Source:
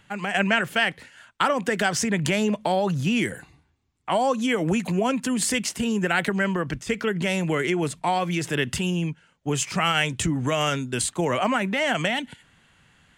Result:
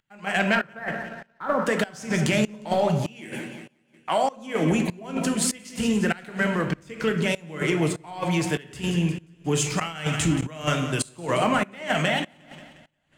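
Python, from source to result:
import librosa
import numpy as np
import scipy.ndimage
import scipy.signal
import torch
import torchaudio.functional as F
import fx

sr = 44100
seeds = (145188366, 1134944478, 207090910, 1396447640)

y = fx.steep_lowpass(x, sr, hz=1900.0, slope=48, at=(0.55, 1.66))
y = fx.echo_feedback(y, sr, ms=178, feedback_pct=57, wet_db=-13.5)
y = fx.leveller(y, sr, passes=1)
y = fx.room_shoebox(y, sr, seeds[0], volume_m3=210.0, walls='mixed', distance_m=0.55)
y = fx.volume_shaper(y, sr, bpm=98, per_beat=1, depth_db=-22, release_ms=263.0, shape='slow start')
y = fx.highpass(y, sr, hz=320.0, slope=6, at=(3.06, 4.37))
y = fx.sustainer(y, sr, db_per_s=95.0, at=(9.48, 10.47))
y = y * librosa.db_to_amplitude(-4.0)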